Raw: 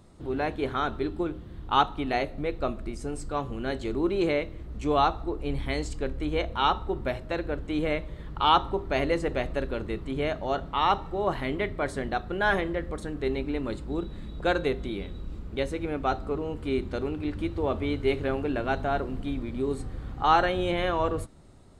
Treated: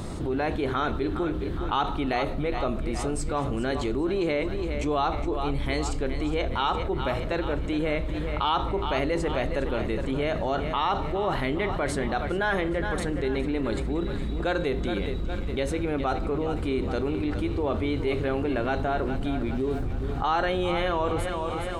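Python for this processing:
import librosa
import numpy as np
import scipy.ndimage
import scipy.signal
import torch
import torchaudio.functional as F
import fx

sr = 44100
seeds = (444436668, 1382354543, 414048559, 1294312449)

y = fx.median_filter(x, sr, points=25, at=(19.54, 20.04))
y = fx.echo_feedback(y, sr, ms=413, feedback_pct=48, wet_db=-13.5)
y = fx.env_flatten(y, sr, amount_pct=70)
y = y * librosa.db_to_amplitude(-5.5)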